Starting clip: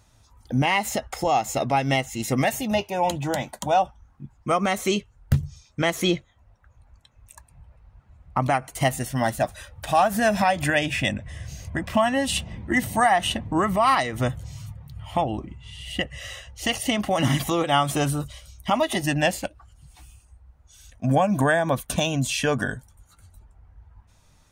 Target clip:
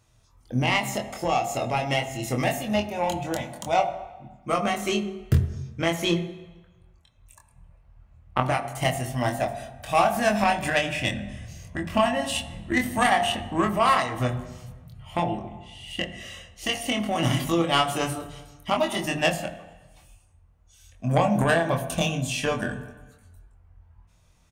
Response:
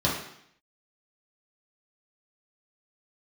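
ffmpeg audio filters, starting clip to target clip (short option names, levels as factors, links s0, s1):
-filter_complex "[0:a]aeval=exprs='0.447*(cos(1*acos(clip(val(0)/0.447,-1,1)))-cos(1*PI/2))+0.0891*(cos(3*acos(clip(val(0)/0.447,-1,1)))-cos(3*PI/2))':c=same,asplit=2[s0][s1];[s1]adelay=24,volume=0.631[s2];[s0][s2]amix=inputs=2:normalize=0,asplit=2[s3][s4];[1:a]atrim=start_sample=2205,asetrate=26460,aresample=44100[s5];[s4][s5]afir=irnorm=-1:irlink=0,volume=0.075[s6];[s3][s6]amix=inputs=2:normalize=0,volume=1.12"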